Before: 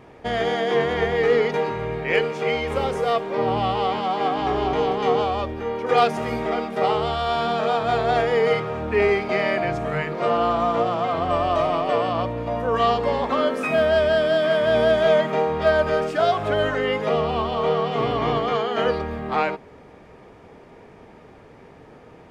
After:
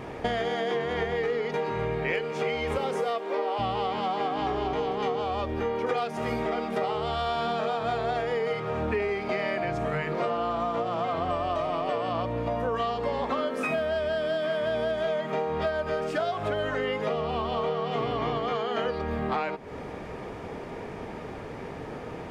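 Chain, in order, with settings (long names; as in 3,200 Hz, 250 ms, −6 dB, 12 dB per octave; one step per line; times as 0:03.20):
0:02.77–0:03.58: high-pass filter 120 Hz → 430 Hz 24 dB per octave
downward compressor 12 to 1, threshold −34 dBFS, peak gain reduction 21.5 dB
level +8.5 dB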